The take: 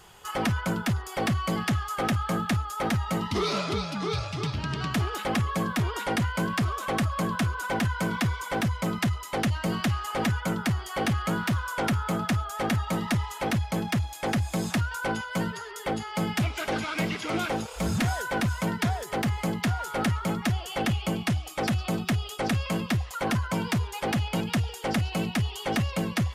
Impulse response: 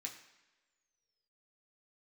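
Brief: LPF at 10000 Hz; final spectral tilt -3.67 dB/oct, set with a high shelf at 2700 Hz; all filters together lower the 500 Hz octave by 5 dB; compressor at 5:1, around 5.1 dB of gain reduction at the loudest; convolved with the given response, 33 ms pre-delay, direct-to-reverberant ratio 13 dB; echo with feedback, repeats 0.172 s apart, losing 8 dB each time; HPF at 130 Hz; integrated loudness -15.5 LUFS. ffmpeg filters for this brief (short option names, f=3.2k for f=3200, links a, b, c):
-filter_complex "[0:a]highpass=130,lowpass=10k,equalizer=f=500:t=o:g=-6.5,highshelf=f=2.7k:g=5,acompressor=threshold=-29dB:ratio=5,aecho=1:1:172|344|516|688|860:0.398|0.159|0.0637|0.0255|0.0102,asplit=2[a][b];[1:a]atrim=start_sample=2205,adelay=33[c];[b][c]afir=irnorm=-1:irlink=0,volume=-10dB[d];[a][d]amix=inputs=2:normalize=0,volume=16.5dB"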